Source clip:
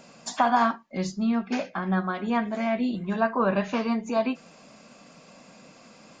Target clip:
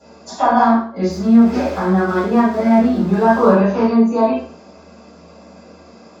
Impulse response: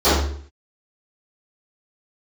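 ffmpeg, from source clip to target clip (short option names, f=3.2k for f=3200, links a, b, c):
-filter_complex "[0:a]asettb=1/sr,asplit=3[a][b][c];[a]atrim=end=1.104[d];[b]atrim=start=1.1:end=3.53,asetpts=PTS-STARTPTS,afade=t=in:d=0.004:c=qsin,afade=t=out:st=2.426:d=0.004:c=qsin,aeval=exprs='val(0)+0.5*0.0266*sgn(val(0))':c=same[e];[c]atrim=start=3.526[f];[d][e]acrossfade=d=0.004:c1=hsin:c2=qsin[g];[g][f]acrossfade=d=0.004:c1=qsin:c2=hsin[h];[1:a]atrim=start_sample=2205,asetrate=48510,aresample=44100[i];[h][i]afir=irnorm=-1:irlink=0,volume=-17.5dB"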